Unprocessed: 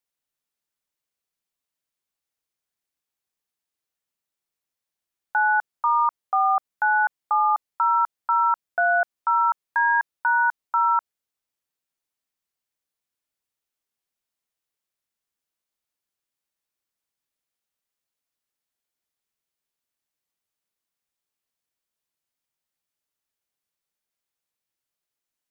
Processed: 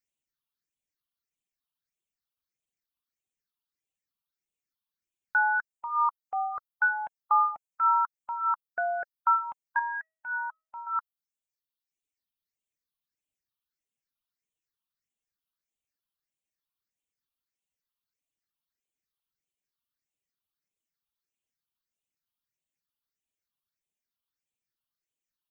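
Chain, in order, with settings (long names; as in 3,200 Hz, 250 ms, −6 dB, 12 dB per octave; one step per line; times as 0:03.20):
reverb reduction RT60 1.8 s
0:09.79–0:10.87: tuned comb filter 640 Hz, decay 0.44 s, mix 60%
all-pass phaser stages 6, 1.6 Hz, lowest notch 510–1,400 Hz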